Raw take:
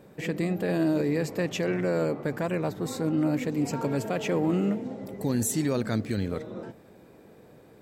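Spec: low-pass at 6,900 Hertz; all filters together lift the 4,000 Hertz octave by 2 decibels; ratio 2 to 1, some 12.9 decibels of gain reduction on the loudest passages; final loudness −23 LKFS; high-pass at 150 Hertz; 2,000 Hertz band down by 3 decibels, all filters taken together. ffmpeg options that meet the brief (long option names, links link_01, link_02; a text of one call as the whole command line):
ffmpeg -i in.wav -af "highpass=150,lowpass=6900,equalizer=frequency=2000:width_type=o:gain=-5,equalizer=frequency=4000:width_type=o:gain=4.5,acompressor=threshold=-47dB:ratio=2,volume=18dB" out.wav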